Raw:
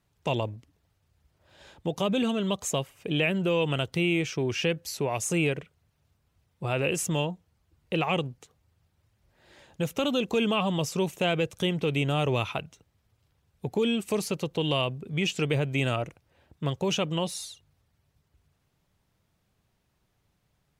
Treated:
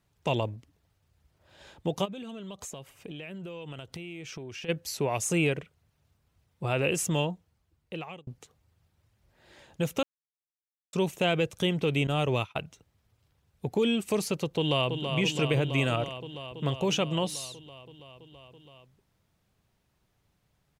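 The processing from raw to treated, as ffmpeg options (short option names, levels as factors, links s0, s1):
-filter_complex "[0:a]asplit=3[s0][s1][s2];[s0]afade=t=out:st=2.04:d=0.02[s3];[s1]acompressor=threshold=0.0141:ratio=12:attack=3.2:release=140:knee=1:detection=peak,afade=t=in:st=2.04:d=0.02,afade=t=out:st=4.68:d=0.02[s4];[s2]afade=t=in:st=4.68:d=0.02[s5];[s3][s4][s5]amix=inputs=3:normalize=0,asettb=1/sr,asplit=3[s6][s7][s8];[s6]atrim=end=12.074[s9];[s7]atrim=start=12.07:end=12.56,asetpts=PTS-STARTPTS,afade=t=in:d=0.004:c=qsin,afade=t=out:st=0.486:d=0.004:c=qsin,agate=range=0.0224:threshold=0.0562:ratio=3:release=100:detection=peak[s10];[s8]atrim=start=12.556[s11];[s9][s10]acrossfade=d=0.004:c1=hsin:c2=qsin[s12];[s12][s11]acrossfade=d=0.004:c1=qsin:c2=hsin,asplit=2[s13][s14];[s14]afade=t=in:st=14.56:d=0.01,afade=t=out:st=15.05:d=0.01,aecho=0:1:330|660|990|1320|1650|1980|2310|2640|2970|3300|3630|3960:0.473151|0.378521|0.302817|0.242253|0.193803|0.155042|0.124034|0.099227|0.0793816|0.0635053|0.0508042|0.0406434[s15];[s13][s15]amix=inputs=2:normalize=0,asplit=4[s16][s17][s18][s19];[s16]atrim=end=8.27,asetpts=PTS-STARTPTS,afade=t=out:st=7.32:d=0.95[s20];[s17]atrim=start=8.27:end=10.03,asetpts=PTS-STARTPTS,afade=t=in:d=0.004:c=hsin,afade=t=out:st=1.756:d=0.004:c=hsin[s21];[s18]atrim=start=10.03:end=10.93,asetpts=PTS-STARTPTS,volume=0[s22];[s19]atrim=start=10.93,asetpts=PTS-STARTPTS,afade=t=in:d=0.004:c=hsin[s23];[s20][s21][s22][s23]concat=n=4:v=0:a=1"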